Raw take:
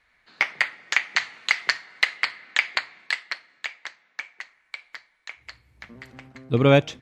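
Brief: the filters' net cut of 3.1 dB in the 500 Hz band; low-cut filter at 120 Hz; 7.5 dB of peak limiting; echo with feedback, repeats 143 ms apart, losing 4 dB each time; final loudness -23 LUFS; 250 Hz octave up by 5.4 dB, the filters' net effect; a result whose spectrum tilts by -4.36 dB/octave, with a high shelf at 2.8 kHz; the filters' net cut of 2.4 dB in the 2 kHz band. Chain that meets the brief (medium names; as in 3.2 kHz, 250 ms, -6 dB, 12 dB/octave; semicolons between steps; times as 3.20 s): high-pass 120 Hz; peaking EQ 250 Hz +8 dB; peaking EQ 500 Hz -5.5 dB; peaking EQ 2 kHz -4.5 dB; treble shelf 2.8 kHz +5 dB; peak limiter -10.5 dBFS; feedback delay 143 ms, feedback 63%, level -4 dB; trim +4.5 dB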